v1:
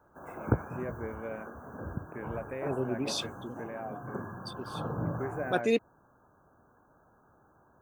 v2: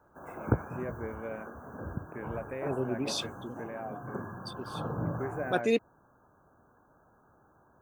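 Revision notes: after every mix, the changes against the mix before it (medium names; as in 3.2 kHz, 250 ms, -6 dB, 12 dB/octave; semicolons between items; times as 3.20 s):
no change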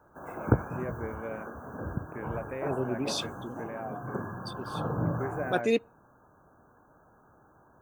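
reverb: on, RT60 0.50 s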